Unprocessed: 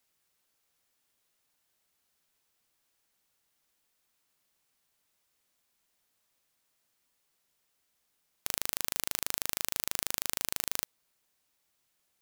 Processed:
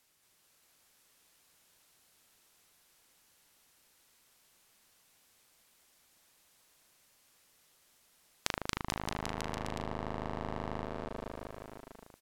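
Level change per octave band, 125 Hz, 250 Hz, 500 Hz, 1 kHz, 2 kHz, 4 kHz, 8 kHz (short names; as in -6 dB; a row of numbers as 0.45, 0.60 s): +12.0, +11.0, +8.5, +6.0, -1.5, -6.0, -12.5 dB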